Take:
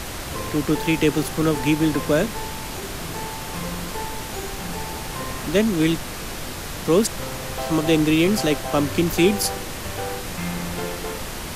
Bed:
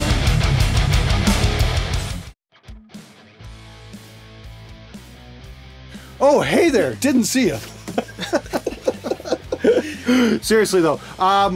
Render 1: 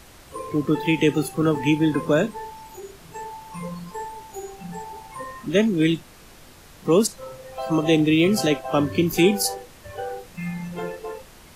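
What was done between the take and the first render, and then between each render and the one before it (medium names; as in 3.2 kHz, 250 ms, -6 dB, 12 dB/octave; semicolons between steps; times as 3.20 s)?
noise print and reduce 16 dB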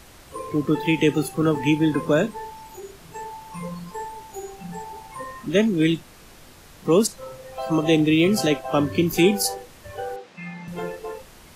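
10.16–10.68 s: band-pass 250–4500 Hz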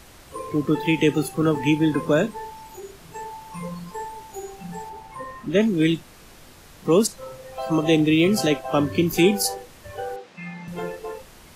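4.89–5.61 s: treble shelf 3.6 kHz -7 dB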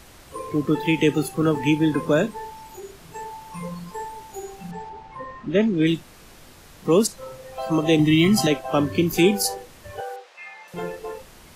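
4.71–5.87 s: distance through air 120 m; 7.99–8.47 s: comb 1 ms, depth 93%; 10.00–10.74 s: high-pass 510 Hz 24 dB/octave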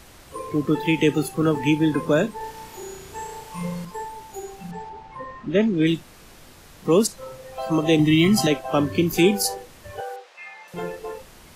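2.37–3.85 s: flutter echo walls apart 5.8 m, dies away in 0.94 s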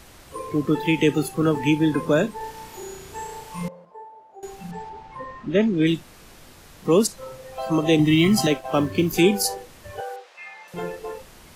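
3.68–4.43 s: band-pass filter 630 Hz, Q 3.4; 8.05–9.14 s: companding laws mixed up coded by A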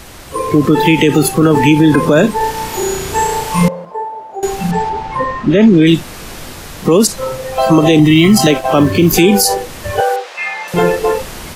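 level rider gain up to 7 dB; loudness maximiser +12.5 dB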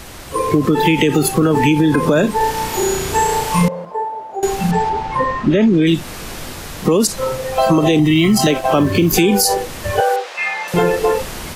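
compression 4:1, threshold -10 dBFS, peak gain reduction 6 dB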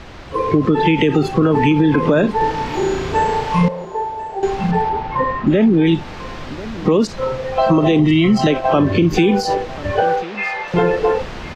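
distance through air 190 m; delay 1041 ms -17.5 dB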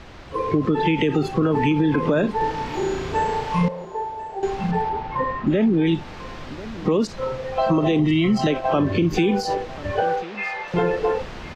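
trim -5.5 dB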